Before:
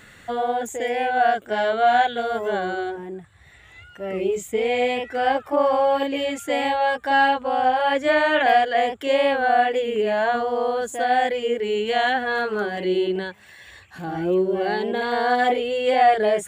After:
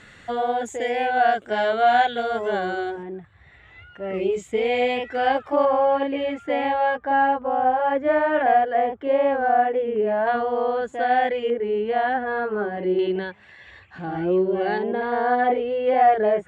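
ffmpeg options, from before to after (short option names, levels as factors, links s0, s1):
-af "asetnsamples=n=441:p=0,asendcmd='3.03 lowpass f 2900;4.14 lowpass f 5000;5.65 lowpass f 2100;6.99 lowpass f 1300;10.27 lowpass f 2600;11.5 lowpass f 1400;12.99 lowpass f 3000;14.78 lowpass f 1600',lowpass=6800"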